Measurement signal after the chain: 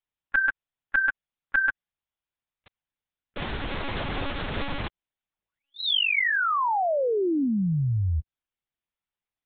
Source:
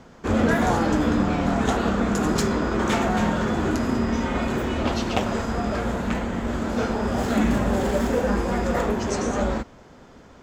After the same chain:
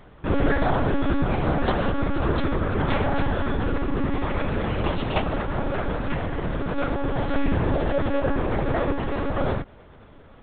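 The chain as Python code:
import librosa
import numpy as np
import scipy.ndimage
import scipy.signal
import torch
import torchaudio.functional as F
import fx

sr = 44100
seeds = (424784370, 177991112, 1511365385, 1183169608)

y = fx.lpc_monotone(x, sr, seeds[0], pitch_hz=280.0, order=10)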